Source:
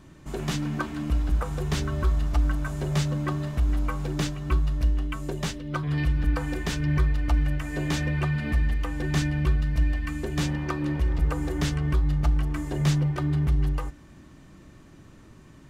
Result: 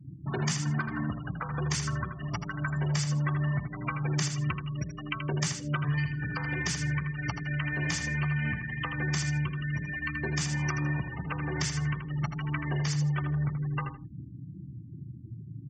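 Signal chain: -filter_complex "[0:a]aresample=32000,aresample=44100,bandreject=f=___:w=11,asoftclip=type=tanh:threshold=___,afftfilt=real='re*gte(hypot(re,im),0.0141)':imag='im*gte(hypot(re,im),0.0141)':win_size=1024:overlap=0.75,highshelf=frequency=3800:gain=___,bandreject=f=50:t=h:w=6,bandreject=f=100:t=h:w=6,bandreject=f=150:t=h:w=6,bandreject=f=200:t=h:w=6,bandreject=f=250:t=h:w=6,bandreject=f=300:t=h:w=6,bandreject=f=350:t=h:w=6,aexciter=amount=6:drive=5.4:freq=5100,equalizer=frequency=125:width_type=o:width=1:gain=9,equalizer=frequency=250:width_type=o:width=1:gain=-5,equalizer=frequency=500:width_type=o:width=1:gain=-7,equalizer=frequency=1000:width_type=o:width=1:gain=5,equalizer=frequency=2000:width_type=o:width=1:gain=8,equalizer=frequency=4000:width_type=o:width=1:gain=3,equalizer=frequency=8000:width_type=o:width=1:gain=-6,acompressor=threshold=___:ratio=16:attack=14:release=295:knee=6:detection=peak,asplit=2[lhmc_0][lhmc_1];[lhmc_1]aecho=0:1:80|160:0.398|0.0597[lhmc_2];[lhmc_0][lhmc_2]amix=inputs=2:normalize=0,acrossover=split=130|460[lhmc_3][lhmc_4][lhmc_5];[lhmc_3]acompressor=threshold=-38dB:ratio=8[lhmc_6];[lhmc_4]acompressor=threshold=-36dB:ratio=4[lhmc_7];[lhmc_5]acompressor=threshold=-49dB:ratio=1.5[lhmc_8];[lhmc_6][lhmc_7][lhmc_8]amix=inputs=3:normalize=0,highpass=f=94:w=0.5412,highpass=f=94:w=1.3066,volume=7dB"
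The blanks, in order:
3900, -19.5dB, 11, -30dB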